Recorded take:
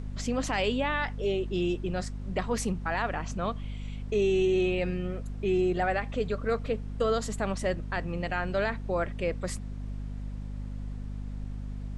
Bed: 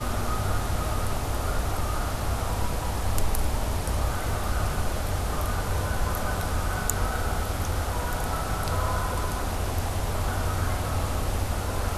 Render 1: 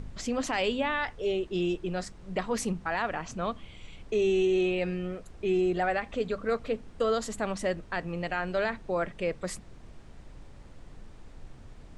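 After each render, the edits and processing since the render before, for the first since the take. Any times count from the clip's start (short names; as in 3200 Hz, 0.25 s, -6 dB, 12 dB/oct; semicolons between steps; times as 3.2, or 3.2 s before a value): de-hum 50 Hz, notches 5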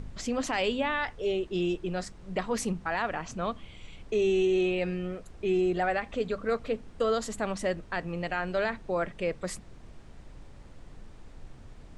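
nothing audible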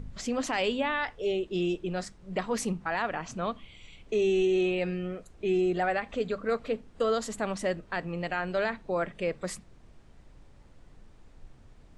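noise print and reduce 6 dB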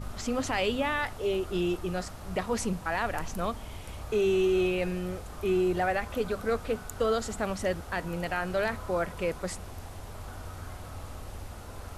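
add bed -14.5 dB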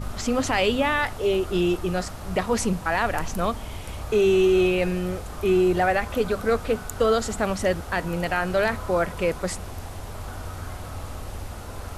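gain +6.5 dB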